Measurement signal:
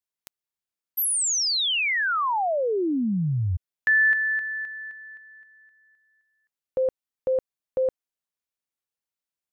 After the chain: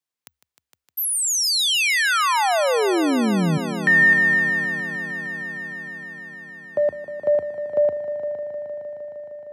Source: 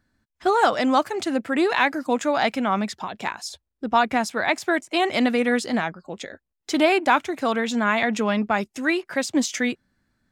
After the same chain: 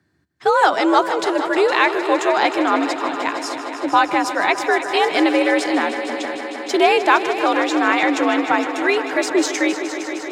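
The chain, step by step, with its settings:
high-shelf EQ 8,800 Hz −5 dB
frequency shifter +69 Hz
on a send: echo machine with several playback heads 154 ms, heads all three, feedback 74%, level −15 dB
on the sum: level +4 dB

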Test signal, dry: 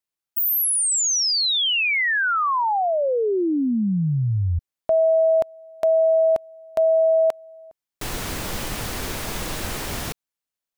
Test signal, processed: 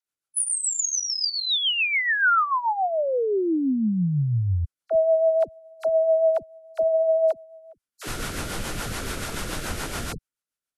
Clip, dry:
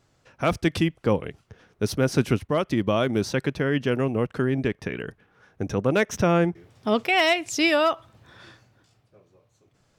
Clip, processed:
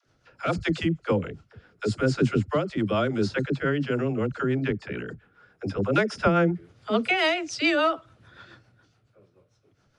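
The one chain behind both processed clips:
hearing-aid frequency compression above 4,000 Hz 1.5 to 1
parametric band 1,400 Hz +8.5 dB 0.23 octaves
rotating-speaker cabinet horn 7 Hz
all-pass dispersion lows, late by 65 ms, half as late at 360 Hz

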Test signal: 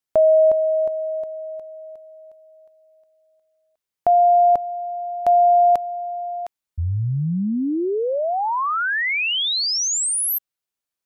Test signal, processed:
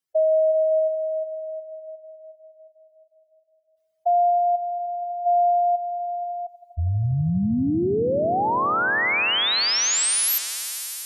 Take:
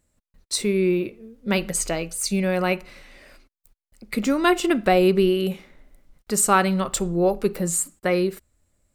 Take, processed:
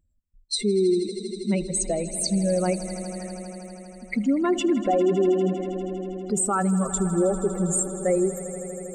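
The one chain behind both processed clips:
expanding power law on the bin magnitudes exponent 2.3
brickwall limiter −15 dBFS
echo that builds up and dies away 80 ms, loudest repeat 5, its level −17 dB

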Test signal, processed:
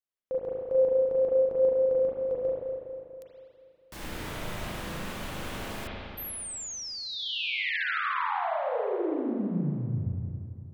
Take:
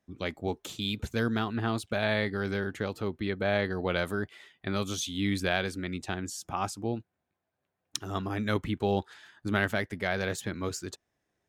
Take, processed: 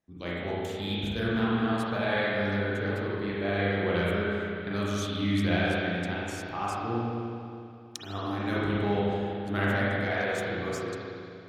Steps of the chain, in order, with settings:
tape wow and flutter 25 cents
spring reverb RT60 2.6 s, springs 34/40 ms, chirp 45 ms, DRR −7.5 dB
level −6 dB

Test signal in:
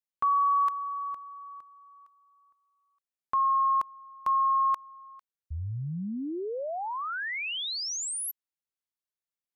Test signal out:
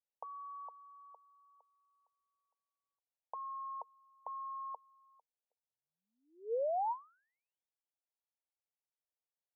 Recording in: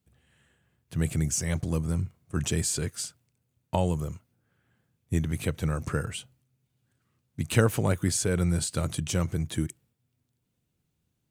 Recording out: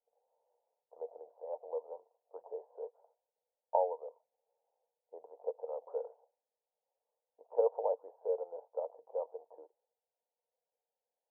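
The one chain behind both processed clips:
Chebyshev band-pass filter 460–940 Hz, order 4

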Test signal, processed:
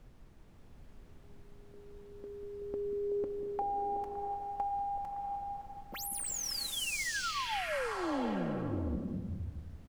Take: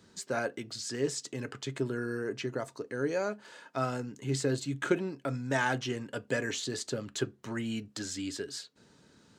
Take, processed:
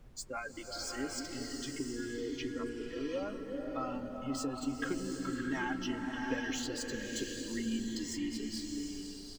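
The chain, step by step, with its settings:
running median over 3 samples
noise reduction from a noise print of the clip's start 22 dB
notch filter 3,700 Hz, Q 6.1
comb filter 3.7 ms, depth 67%
downward compressor, threshold −32 dBFS
background noise brown −52 dBFS
echo through a band-pass that steps 188 ms, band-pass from 200 Hz, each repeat 1.4 octaves, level −2.5 dB
slow-attack reverb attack 720 ms, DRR 2.5 dB
level −2.5 dB

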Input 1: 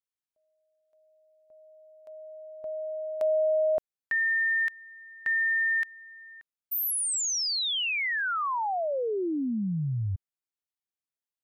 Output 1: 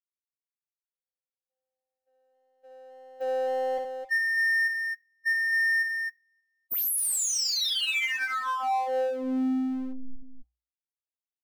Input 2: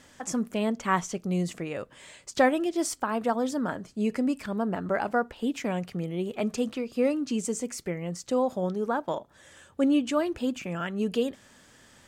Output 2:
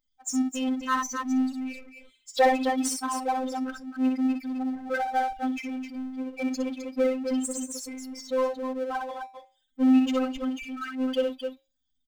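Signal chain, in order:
spectral dynamics exaggerated over time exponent 3
phases set to zero 259 Hz
tuned comb filter 60 Hz, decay 0.26 s, harmonics odd, mix 40%
multi-tap delay 62/261 ms −6/−9.5 dB
power curve on the samples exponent 0.7
level +5.5 dB

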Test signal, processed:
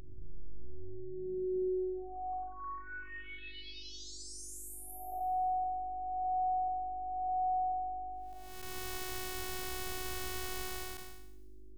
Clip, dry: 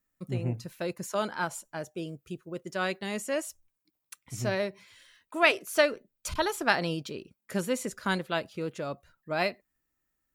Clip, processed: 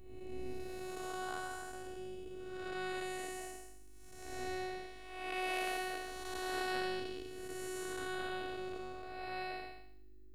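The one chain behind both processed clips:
spectrum smeared in time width 431 ms
mains hum 50 Hz, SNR 12 dB
delay with a high-pass on its return 253 ms, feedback 36%, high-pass 4,700 Hz, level −23 dB
phases set to zero 370 Hz

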